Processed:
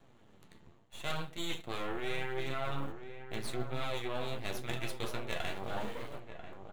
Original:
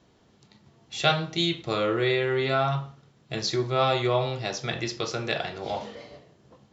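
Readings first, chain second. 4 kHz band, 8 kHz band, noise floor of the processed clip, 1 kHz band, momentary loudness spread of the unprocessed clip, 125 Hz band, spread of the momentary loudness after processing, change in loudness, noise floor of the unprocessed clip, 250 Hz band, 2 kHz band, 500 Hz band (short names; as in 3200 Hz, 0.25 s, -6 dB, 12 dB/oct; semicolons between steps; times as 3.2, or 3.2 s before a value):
-13.0 dB, n/a, -60 dBFS, -12.0 dB, 11 LU, -12.0 dB, 8 LU, -13.0 dB, -61 dBFS, -11.5 dB, -10.0 dB, -13.5 dB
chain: in parallel at -12 dB: bit-crush 7-bit; on the sum: dynamic EQ 3300 Hz, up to +5 dB, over -39 dBFS, Q 0.84; half-wave rectifier; flange 0.82 Hz, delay 7.1 ms, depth 5.5 ms, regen +47%; reverse; compressor 6:1, threshold -38 dBFS, peak gain reduction 19.5 dB; reverse; bell 5200 Hz -13 dB 0.62 oct; outdoor echo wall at 170 m, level -9 dB; gain +6 dB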